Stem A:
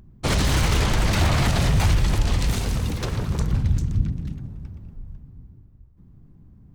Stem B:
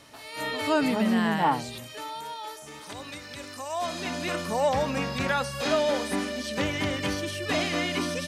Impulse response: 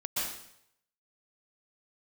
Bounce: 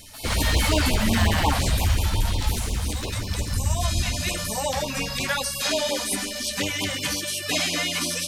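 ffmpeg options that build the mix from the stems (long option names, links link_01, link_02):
-filter_complex "[0:a]equalizer=frequency=150:width_type=o:width=0.4:gain=-13,volume=0dB,asplit=2[link_01][link_02];[link_02]volume=-10.5dB[link_03];[1:a]crystalizer=i=4.5:c=0,volume=2dB[link_04];[2:a]atrim=start_sample=2205[link_05];[link_03][link_05]afir=irnorm=-1:irlink=0[link_06];[link_01][link_04][link_06]amix=inputs=3:normalize=0,flanger=delay=10:depth=4.8:regen=-39:speed=0.89:shape=sinusoidal,afftfilt=real='re*(1-between(b*sr/1024,300*pow(1700/300,0.5+0.5*sin(2*PI*5.6*pts/sr))/1.41,300*pow(1700/300,0.5+0.5*sin(2*PI*5.6*pts/sr))*1.41))':imag='im*(1-between(b*sr/1024,300*pow(1700/300,0.5+0.5*sin(2*PI*5.6*pts/sr))/1.41,300*pow(1700/300,0.5+0.5*sin(2*PI*5.6*pts/sr))*1.41))':win_size=1024:overlap=0.75"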